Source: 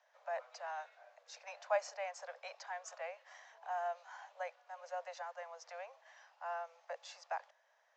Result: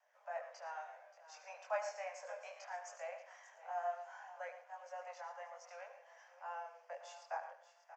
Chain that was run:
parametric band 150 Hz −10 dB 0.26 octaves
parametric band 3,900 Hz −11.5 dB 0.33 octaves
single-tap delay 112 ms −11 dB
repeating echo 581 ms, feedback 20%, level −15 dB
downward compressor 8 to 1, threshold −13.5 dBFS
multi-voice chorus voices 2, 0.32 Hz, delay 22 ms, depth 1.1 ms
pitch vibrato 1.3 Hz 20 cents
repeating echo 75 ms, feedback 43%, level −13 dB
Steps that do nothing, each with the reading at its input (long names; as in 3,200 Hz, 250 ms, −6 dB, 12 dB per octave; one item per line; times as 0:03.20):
parametric band 150 Hz: nothing at its input below 480 Hz
downward compressor, threshold −13.5 dBFS: peak of its input −20.5 dBFS